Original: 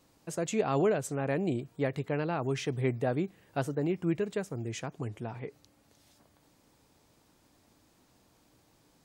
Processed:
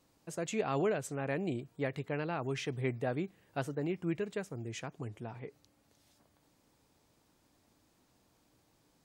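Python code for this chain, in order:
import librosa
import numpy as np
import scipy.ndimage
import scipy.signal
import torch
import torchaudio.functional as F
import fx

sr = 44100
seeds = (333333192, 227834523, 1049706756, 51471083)

y = fx.dynamic_eq(x, sr, hz=2300.0, q=0.74, threshold_db=-45.0, ratio=4.0, max_db=4)
y = y * 10.0 ** (-5.0 / 20.0)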